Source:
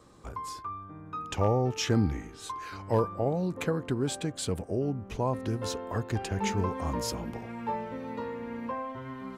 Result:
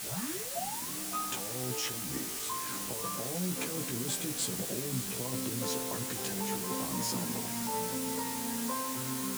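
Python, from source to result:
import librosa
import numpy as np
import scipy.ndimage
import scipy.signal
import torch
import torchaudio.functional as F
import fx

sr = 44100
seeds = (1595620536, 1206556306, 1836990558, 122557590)

y = fx.tape_start_head(x, sr, length_s=0.98)
y = fx.over_compress(y, sr, threshold_db=-33.0, ratio=-1.0)
y = scipy.signal.sosfilt(scipy.signal.butter(4, 140.0, 'highpass', fs=sr, output='sos'), y)
y = fx.low_shelf(y, sr, hz=320.0, db=7.5)
y = fx.echo_diffused(y, sr, ms=580, feedback_pct=47, wet_db=-12.0)
y = fx.quant_dither(y, sr, seeds[0], bits=6, dither='triangular')
y = fx.peak_eq(y, sr, hz=8900.0, db=6.0, octaves=1.4)
y = fx.doubler(y, sr, ms=16.0, db=-2.0)
y = y * 10.0 ** (-8.0 / 20.0)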